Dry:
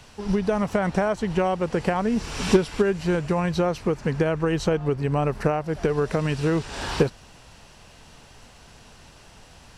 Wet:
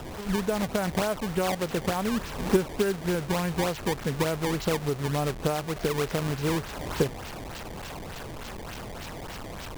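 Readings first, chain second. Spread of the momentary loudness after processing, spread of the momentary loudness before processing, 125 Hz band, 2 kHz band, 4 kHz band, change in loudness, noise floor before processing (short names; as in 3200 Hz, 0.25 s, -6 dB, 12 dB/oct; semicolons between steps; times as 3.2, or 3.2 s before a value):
12 LU, 4 LU, -4.0 dB, -2.5 dB, +0.5 dB, -5.0 dB, -50 dBFS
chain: delta modulation 64 kbps, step -27.5 dBFS; decimation with a swept rate 19×, swing 160% 3.4 Hz; gain -4.5 dB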